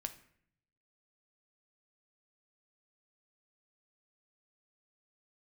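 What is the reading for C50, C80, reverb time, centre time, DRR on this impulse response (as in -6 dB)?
13.5 dB, 17.0 dB, 0.65 s, 7 ms, 8.0 dB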